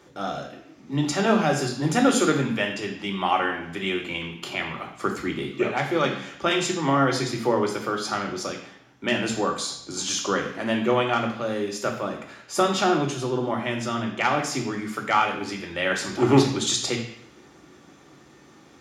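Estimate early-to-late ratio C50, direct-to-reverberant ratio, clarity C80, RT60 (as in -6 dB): 7.5 dB, 1.5 dB, 10.0 dB, 0.75 s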